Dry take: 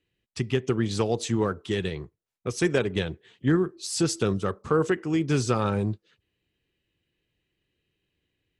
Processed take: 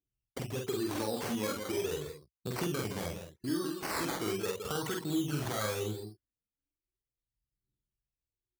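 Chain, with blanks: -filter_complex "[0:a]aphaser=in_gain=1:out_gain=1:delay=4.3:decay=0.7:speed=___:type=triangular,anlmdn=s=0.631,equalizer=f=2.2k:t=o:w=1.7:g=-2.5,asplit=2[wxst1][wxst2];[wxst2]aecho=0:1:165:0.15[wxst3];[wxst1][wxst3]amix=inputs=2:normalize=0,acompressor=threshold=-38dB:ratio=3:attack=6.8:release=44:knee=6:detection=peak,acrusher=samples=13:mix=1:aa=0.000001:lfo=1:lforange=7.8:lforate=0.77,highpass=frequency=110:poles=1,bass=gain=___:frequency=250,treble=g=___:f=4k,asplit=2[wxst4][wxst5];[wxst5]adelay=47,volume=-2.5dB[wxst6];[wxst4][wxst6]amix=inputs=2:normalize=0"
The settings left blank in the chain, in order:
0.39, -1, 4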